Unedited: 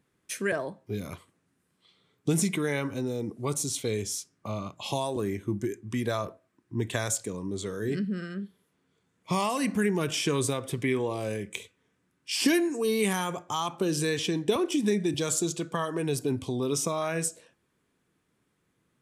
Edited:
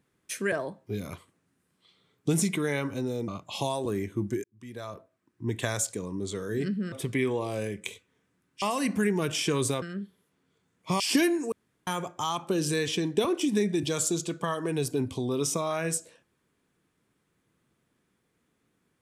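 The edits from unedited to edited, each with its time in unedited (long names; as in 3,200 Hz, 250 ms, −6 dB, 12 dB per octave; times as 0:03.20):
0:03.28–0:04.59: remove
0:05.75–0:06.91: fade in
0:08.23–0:09.41: swap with 0:10.61–0:12.31
0:12.83–0:13.18: fill with room tone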